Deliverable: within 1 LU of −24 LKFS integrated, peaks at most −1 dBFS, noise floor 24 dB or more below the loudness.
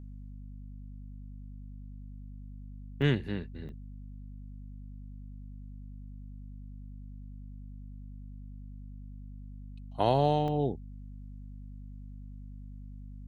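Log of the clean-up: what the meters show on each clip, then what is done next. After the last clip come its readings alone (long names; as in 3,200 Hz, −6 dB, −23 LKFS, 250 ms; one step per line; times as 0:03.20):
number of dropouts 3; longest dropout 2.6 ms; mains hum 50 Hz; hum harmonics up to 250 Hz; level of the hum −42 dBFS; integrated loudness −30.5 LKFS; sample peak −12.0 dBFS; target loudness −24.0 LKFS
→ repair the gap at 0:03.02/0:03.69/0:10.48, 2.6 ms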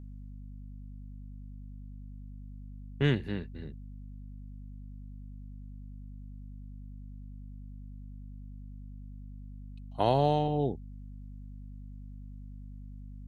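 number of dropouts 0; mains hum 50 Hz; hum harmonics up to 250 Hz; level of the hum −42 dBFS
→ mains-hum notches 50/100/150/200/250 Hz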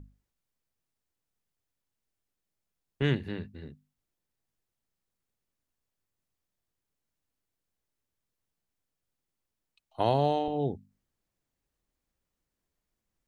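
mains hum none found; integrated loudness −30.0 LKFS; sample peak −12.5 dBFS; target loudness −24.0 LKFS
→ level +6 dB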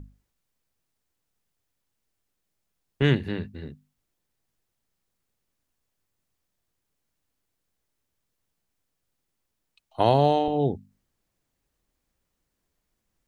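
integrated loudness −24.0 LKFS; sample peak −6.5 dBFS; background noise floor −80 dBFS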